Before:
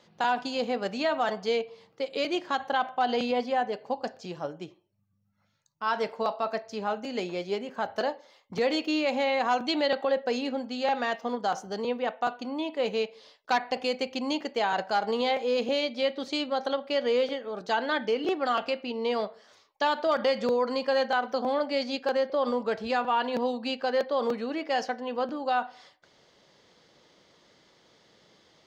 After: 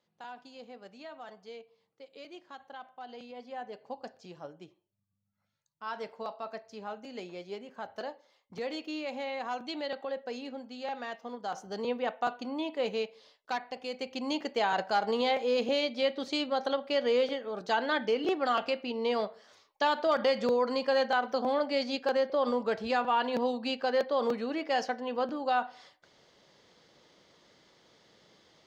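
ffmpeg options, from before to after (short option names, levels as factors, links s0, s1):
-af "volume=2.24,afade=t=in:st=3.34:d=0.5:silence=0.354813,afade=t=in:st=11.4:d=0.48:silence=0.421697,afade=t=out:st=12.69:d=1.11:silence=0.375837,afade=t=in:st=13.8:d=0.68:silence=0.334965"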